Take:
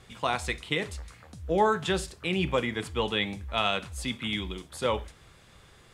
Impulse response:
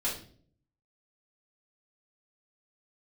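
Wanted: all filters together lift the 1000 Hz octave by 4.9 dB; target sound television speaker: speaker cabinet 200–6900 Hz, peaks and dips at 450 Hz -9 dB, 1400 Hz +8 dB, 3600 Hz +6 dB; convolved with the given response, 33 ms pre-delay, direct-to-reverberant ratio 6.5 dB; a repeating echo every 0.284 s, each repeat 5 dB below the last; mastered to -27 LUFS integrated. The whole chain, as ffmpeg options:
-filter_complex "[0:a]equalizer=f=1k:t=o:g=3.5,aecho=1:1:284|568|852|1136|1420|1704|1988:0.562|0.315|0.176|0.0988|0.0553|0.031|0.0173,asplit=2[a][b];[1:a]atrim=start_sample=2205,adelay=33[c];[b][c]afir=irnorm=-1:irlink=0,volume=-12dB[d];[a][d]amix=inputs=2:normalize=0,highpass=f=200:w=0.5412,highpass=f=200:w=1.3066,equalizer=f=450:t=q:w=4:g=-9,equalizer=f=1.4k:t=q:w=4:g=8,equalizer=f=3.6k:t=q:w=4:g=6,lowpass=f=6.9k:w=0.5412,lowpass=f=6.9k:w=1.3066,volume=-2dB"

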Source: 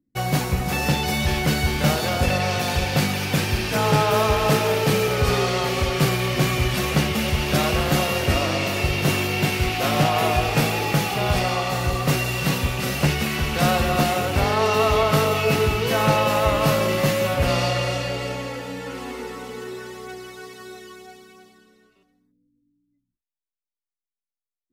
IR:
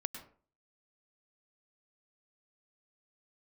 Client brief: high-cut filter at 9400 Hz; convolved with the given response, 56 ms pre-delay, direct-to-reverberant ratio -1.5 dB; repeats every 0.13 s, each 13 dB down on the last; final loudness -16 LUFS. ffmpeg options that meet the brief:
-filter_complex "[0:a]lowpass=9.4k,aecho=1:1:130|260|390:0.224|0.0493|0.0108,asplit=2[a][b];[1:a]atrim=start_sample=2205,adelay=56[c];[b][c]afir=irnorm=-1:irlink=0,volume=1.5dB[d];[a][d]amix=inputs=2:normalize=0,volume=1dB"

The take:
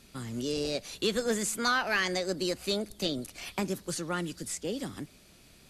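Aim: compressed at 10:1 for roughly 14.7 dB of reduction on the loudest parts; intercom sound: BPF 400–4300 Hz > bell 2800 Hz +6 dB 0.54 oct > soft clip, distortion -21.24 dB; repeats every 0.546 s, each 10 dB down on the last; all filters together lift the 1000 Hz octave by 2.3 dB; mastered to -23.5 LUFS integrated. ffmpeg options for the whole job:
-af "equalizer=f=1k:t=o:g=3,acompressor=threshold=-37dB:ratio=10,highpass=400,lowpass=4.3k,equalizer=f=2.8k:t=o:w=0.54:g=6,aecho=1:1:546|1092|1638|2184:0.316|0.101|0.0324|0.0104,asoftclip=threshold=-29dB,volume=20dB"

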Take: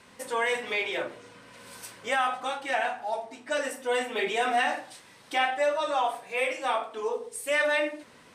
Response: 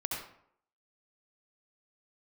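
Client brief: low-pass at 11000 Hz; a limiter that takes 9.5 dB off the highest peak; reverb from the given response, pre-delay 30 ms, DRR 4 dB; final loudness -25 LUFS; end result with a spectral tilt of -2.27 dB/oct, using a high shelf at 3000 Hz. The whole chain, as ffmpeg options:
-filter_complex "[0:a]lowpass=11k,highshelf=f=3k:g=-5,alimiter=level_in=1dB:limit=-24dB:level=0:latency=1,volume=-1dB,asplit=2[a][b];[1:a]atrim=start_sample=2205,adelay=30[c];[b][c]afir=irnorm=-1:irlink=0,volume=-7.5dB[d];[a][d]amix=inputs=2:normalize=0,volume=8dB"

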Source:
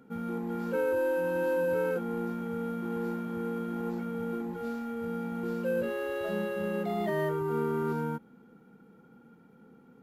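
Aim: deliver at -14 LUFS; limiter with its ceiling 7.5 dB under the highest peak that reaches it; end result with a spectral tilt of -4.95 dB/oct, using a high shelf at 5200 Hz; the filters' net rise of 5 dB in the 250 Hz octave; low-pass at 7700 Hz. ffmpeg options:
-af "lowpass=7.7k,equalizer=f=250:t=o:g=6,highshelf=f=5.2k:g=5.5,volume=18.5dB,alimiter=limit=-6.5dB:level=0:latency=1"

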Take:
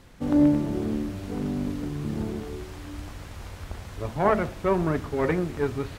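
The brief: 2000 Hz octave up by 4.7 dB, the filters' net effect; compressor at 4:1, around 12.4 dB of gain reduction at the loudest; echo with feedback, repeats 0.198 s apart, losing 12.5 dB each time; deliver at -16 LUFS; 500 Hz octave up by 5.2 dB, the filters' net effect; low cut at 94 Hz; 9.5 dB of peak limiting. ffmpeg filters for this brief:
-af "highpass=94,equalizer=f=500:t=o:g=6.5,equalizer=f=2k:t=o:g=5.5,acompressor=threshold=-28dB:ratio=4,alimiter=level_in=2dB:limit=-24dB:level=0:latency=1,volume=-2dB,aecho=1:1:198|396|594:0.237|0.0569|0.0137,volume=19.5dB"

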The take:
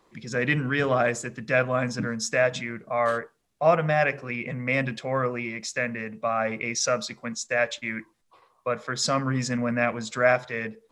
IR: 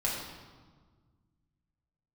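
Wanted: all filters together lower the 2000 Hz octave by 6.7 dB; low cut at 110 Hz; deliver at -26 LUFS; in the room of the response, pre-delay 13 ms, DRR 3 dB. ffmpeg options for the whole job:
-filter_complex "[0:a]highpass=110,equalizer=f=2k:t=o:g=-8.5,asplit=2[a][b];[1:a]atrim=start_sample=2205,adelay=13[c];[b][c]afir=irnorm=-1:irlink=0,volume=-10dB[d];[a][d]amix=inputs=2:normalize=0"

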